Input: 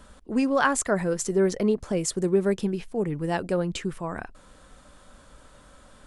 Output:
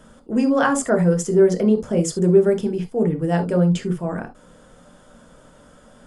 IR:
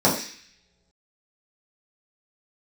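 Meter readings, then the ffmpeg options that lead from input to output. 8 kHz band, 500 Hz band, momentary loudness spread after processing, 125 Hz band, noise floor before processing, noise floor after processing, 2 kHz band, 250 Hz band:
+1.0 dB, +7.0 dB, 9 LU, +10.0 dB, -53 dBFS, -50 dBFS, +1.5 dB, +7.5 dB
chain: -filter_complex "[0:a]bandreject=f=3800:w=13,asplit=2[s0][s1];[1:a]atrim=start_sample=2205,atrim=end_sample=3087,asetrate=37926,aresample=44100[s2];[s1][s2]afir=irnorm=-1:irlink=0,volume=0.112[s3];[s0][s3]amix=inputs=2:normalize=0,volume=0.891"

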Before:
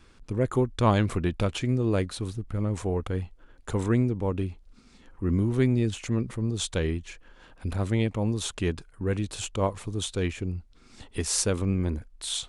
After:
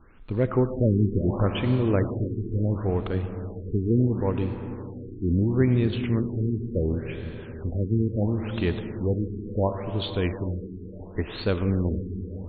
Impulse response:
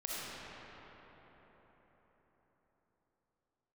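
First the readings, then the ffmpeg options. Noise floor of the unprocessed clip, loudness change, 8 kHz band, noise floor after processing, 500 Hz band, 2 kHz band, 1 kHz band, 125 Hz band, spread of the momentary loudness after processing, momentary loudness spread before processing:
-55 dBFS, +1.5 dB, under -40 dB, -40 dBFS, +2.5 dB, -1.5 dB, -2.5 dB, +3.0 dB, 12 LU, 10 LU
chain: -filter_complex "[0:a]acrusher=bits=8:mode=log:mix=0:aa=0.000001,asplit=2[s0][s1];[1:a]atrim=start_sample=2205[s2];[s1][s2]afir=irnorm=-1:irlink=0,volume=0.376[s3];[s0][s3]amix=inputs=2:normalize=0,afftfilt=real='re*lt(b*sr/1024,430*pow(4600/430,0.5+0.5*sin(2*PI*0.72*pts/sr)))':imag='im*lt(b*sr/1024,430*pow(4600/430,0.5+0.5*sin(2*PI*0.72*pts/sr)))':win_size=1024:overlap=0.75"

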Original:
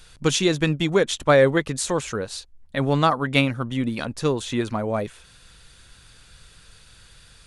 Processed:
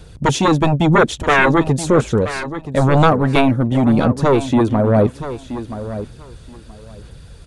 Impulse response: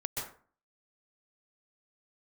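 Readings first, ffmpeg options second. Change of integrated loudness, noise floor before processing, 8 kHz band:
+7.0 dB, -52 dBFS, -0.5 dB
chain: -filter_complex "[0:a]highpass=46,acrossover=split=690|1600[s0][s1][s2];[s0]aeval=exprs='0.355*sin(PI/2*3.98*val(0)/0.355)':c=same[s3];[s3][s1][s2]amix=inputs=3:normalize=0,aecho=1:1:976|1952:0.251|0.0452,aphaser=in_gain=1:out_gain=1:delay=3.6:decay=0.28:speed=0.99:type=sinusoidal,volume=0.891"

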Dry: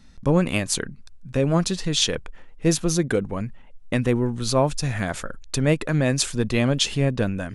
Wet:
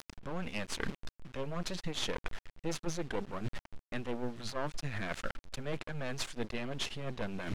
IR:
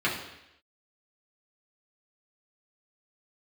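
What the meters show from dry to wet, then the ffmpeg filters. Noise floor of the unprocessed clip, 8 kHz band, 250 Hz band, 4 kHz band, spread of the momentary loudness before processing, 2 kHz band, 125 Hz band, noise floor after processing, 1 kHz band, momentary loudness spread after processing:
-45 dBFS, -18.5 dB, -17.5 dB, -14.5 dB, 9 LU, -11.0 dB, -18.5 dB, under -85 dBFS, -11.5 dB, 6 LU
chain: -af "acrusher=bits=5:dc=4:mix=0:aa=0.000001,areverse,acompressor=threshold=0.0178:ratio=5,areverse,aeval=exprs='max(val(0),0)':c=same,lowpass=3000,acompressor=mode=upward:threshold=0.00501:ratio=2.5,aemphasis=mode=production:type=75fm,volume=1.88"

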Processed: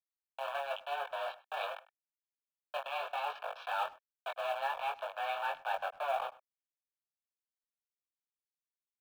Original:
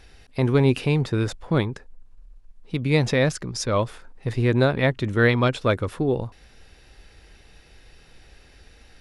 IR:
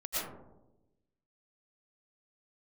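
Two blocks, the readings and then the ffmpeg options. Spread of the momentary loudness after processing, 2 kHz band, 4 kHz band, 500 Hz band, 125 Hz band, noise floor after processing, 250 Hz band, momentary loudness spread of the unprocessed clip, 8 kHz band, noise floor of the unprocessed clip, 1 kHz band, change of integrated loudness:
8 LU, -13.0 dB, -12.0 dB, -16.5 dB, under -40 dB, under -85 dBFS, under -40 dB, 12 LU, under -20 dB, -53 dBFS, -3.0 dB, -15.5 dB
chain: -filter_complex "[0:a]areverse,acompressor=threshold=0.0447:ratio=16,areverse,acrusher=bits=4:mix=0:aa=0.000001,flanger=delay=20:depth=2.9:speed=1.2,highpass=f=310:t=q:w=0.5412,highpass=f=310:t=q:w=1.307,lowpass=f=3200:t=q:w=0.5176,lowpass=f=3200:t=q:w=0.7071,lowpass=f=3200:t=q:w=1.932,afreqshift=280,asuperstop=centerf=2000:order=12:qfactor=4.5,asplit=2[s0][s1];[s1]adelay=100,highpass=300,lowpass=3400,asoftclip=type=hard:threshold=0.0282,volume=0.112[s2];[s0][s2]amix=inputs=2:normalize=0,acrusher=bits=6:mode=log:mix=0:aa=0.000001,adynamicequalizer=threshold=0.00447:dfrequency=1900:dqfactor=0.7:tfrequency=1900:tqfactor=0.7:attack=5:release=100:ratio=0.375:range=2:mode=cutabove:tftype=highshelf"

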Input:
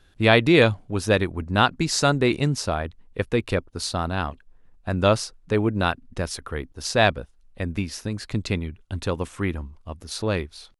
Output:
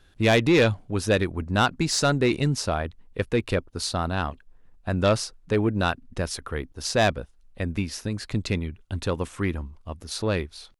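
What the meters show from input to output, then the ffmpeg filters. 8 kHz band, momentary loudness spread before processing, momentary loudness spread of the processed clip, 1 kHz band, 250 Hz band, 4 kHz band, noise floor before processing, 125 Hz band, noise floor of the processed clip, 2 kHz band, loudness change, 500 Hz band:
0.0 dB, 14 LU, 12 LU, -2.5 dB, -1.0 dB, -2.0 dB, -56 dBFS, -1.0 dB, -56 dBFS, -3.0 dB, -2.0 dB, -1.5 dB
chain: -af "asoftclip=type=tanh:threshold=0.266"

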